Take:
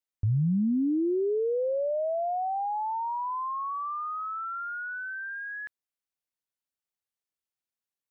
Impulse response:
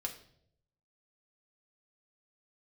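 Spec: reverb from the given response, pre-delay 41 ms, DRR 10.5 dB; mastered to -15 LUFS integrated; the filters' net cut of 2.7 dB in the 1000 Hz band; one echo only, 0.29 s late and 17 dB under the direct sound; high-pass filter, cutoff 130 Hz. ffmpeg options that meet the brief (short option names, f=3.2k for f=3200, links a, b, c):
-filter_complex "[0:a]highpass=130,equalizer=f=1k:t=o:g=-3.5,aecho=1:1:290:0.141,asplit=2[a][b];[1:a]atrim=start_sample=2205,adelay=41[c];[b][c]afir=irnorm=-1:irlink=0,volume=-10.5dB[d];[a][d]amix=inputs=2:normalize=0,volume=15.5dB"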